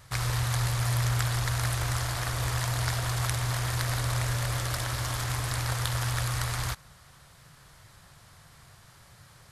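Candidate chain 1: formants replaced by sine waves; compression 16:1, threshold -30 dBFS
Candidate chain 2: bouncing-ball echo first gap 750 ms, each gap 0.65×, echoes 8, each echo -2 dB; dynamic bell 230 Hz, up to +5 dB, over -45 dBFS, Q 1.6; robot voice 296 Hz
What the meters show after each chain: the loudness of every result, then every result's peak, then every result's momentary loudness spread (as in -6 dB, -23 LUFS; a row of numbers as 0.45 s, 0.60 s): -33.0 LUFS, -31.0 LUFS; -21.0 dBFS, -8.0 dBFS; 18 LU, 6 LU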